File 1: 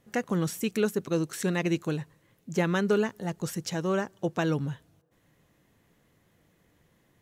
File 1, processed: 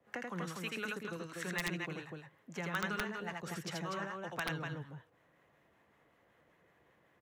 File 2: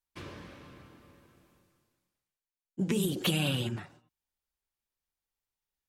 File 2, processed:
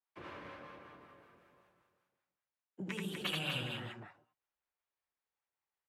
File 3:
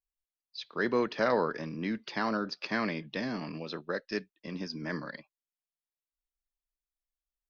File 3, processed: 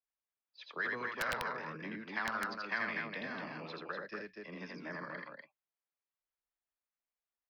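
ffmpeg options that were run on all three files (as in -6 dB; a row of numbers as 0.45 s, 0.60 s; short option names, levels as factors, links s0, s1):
-filter_complex "[0:a]acrossover=split=750[s0][s1];[s0]aeval=exprs='val(0)*(1-0.7/2+0.7/2*cos(2*PI*5.3*n/s))':c=same[s2];[s1]aeval=exprs='val(0)*(1-0.7/2-0.7/2*cos(2*PI*5.3*n/s))':c=same[s3];[s2][s3]amix=inputs=2:normalize=0,acrossover=split=140|3000[s4][s5][s6];[s5]acompressor=threshold=0.0224:ratio=2.5[s7];[s4][s7][s6]amix=inputs=3:normalize=0,highpass=42,acrossover=split=450 2700:gain=0.224 1 0.251[s8][s9][s10];[s8][s9][s10]amix=inputs=3:normalize=0,bandreject=f=50:t=h:w=6,bandreject=f=100:t=h:w=6,asplit=2[s11][s12];[s12]aecho=0:1:81.63|244.9:0.794|0.562[s13];[s11][s13]amix=inputs=2:normalize=0,aeval=exprs='(mod(16.8*val(0)+1,2)-1)/16.8':c=same,highshelf=f=3700:g=-6,acrossover=split=220|1100[s14][s15][s16];[s15]acompressor=threshold=0.00251:ratio=4[s17];[s14][s17][s16]amix=inputs=3:normalize=0,volume=1.58"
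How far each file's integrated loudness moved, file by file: -11.0 LU, -9.5 LU, -6.0 LU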